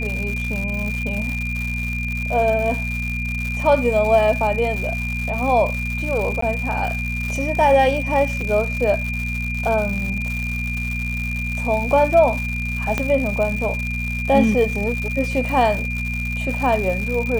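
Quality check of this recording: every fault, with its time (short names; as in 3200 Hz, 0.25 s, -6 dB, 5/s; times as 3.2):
crackle 210/s -25 dBFS
hum 60 Hz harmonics 4 -26 dBFS
tone 2400 Hz -26 dBFS
6.41–6.42 gap 14 ms
8.41 gap 3.3 ms
12.98 pop -7 dBFS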